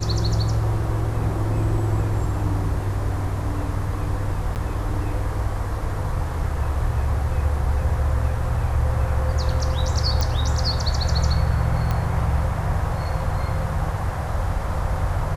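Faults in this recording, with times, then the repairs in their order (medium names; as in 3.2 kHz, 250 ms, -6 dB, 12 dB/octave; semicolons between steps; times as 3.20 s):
4.55–4.56 s: dropout 9.1 ms
10.21 s: pop
11.91 s: pop -12 dBFS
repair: de-click; interpolate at 4.55 s, 9.1 ms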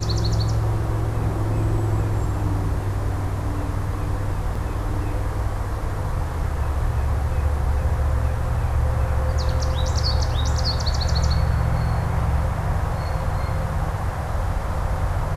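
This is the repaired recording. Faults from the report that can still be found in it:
nothing left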